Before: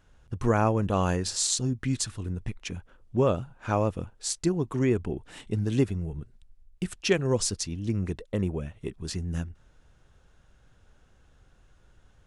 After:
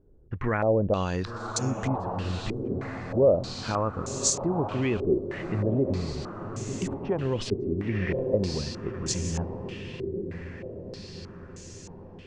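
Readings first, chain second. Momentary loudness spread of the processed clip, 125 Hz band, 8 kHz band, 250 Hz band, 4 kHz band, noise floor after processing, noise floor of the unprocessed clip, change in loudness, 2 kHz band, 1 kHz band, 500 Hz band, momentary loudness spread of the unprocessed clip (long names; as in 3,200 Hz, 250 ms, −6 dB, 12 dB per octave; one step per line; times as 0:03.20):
16 LU, −0.5 dB, −0.5 dB, 0.0 dB, −1.5 dB, −45 dBFS, −60 dBFS, 0.0 dB, +1.0 dB, 0.0 dB, +3.5 dB, 12 LU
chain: feedback delay with all-pass diffusion 1,052 ms, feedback 60%, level −9 dB
brickwall limiter −18.5 dBFS, peak gain reduction 7.5 dB
low-pass on a step sequencer 3.2 Hz 390–6,700 Hz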